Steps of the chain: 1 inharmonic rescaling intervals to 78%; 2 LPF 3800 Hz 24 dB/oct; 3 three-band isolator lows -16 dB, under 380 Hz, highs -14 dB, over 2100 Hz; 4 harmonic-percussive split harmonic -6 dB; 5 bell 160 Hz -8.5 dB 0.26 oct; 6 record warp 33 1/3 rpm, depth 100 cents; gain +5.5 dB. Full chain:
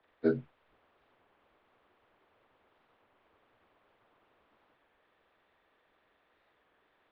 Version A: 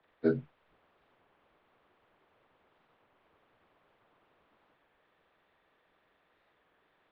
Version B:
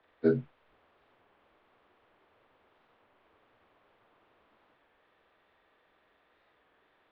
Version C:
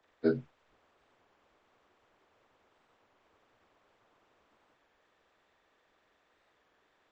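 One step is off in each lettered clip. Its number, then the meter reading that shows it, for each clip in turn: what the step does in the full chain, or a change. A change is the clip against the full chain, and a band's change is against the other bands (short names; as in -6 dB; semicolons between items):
5, 125 Hz band +2.0 dB; 4, 125 Hz band +4.0 dB; 2, 4 kHz band +4.5 dB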